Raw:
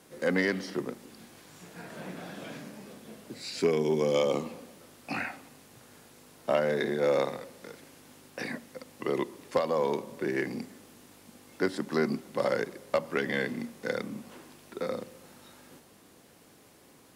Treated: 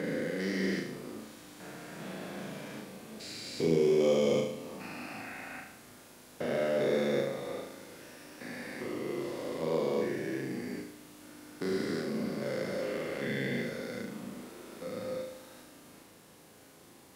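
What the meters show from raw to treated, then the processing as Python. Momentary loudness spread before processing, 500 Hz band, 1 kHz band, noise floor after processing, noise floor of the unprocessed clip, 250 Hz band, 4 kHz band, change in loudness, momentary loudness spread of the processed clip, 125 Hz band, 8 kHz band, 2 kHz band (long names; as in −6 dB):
21 LU, −2.0 dB, −6.5 dB, −56 dBFS, −58 dBFS, −0.5 dB, −1.5 dB, −2.5 dB, 20 LU, +0.5 dB, 0.0 dB, −4.5 dB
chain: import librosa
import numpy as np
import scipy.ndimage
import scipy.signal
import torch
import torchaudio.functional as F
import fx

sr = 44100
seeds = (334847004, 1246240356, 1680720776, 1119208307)

y = fx.spec_steps(x, sr, hold_ms=400)
y = fx.dynamic_eq(y, sr, hz=980.0, q=0.99, threshold_db=-47.0, ratio=4.0, max_db=-8)
y = fx.room_flutter(y, sr, wall_m=6.3, rt60_s=0.68)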